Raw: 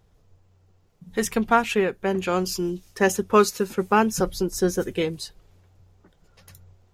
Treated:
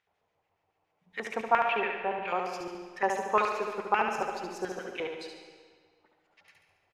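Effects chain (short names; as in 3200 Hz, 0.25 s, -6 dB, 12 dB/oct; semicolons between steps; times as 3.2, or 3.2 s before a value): 1.48–2.28 LPF 3600 Hz 24 dB/oct; LFO band-pass square 7.1 Hz 830–2200 Hz; feedback echo 71 ms, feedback 47%, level -5 dB; on a send at -8 dB: reverb RT60 1.7 s, pre-delay 80 ms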